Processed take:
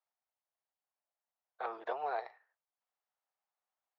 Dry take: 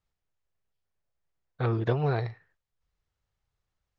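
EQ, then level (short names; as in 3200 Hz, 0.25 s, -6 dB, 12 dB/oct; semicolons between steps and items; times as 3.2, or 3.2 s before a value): ladder high-pass 610 Hz, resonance 45%; high shelf 2700 Hz -9 dB; +3.0 dB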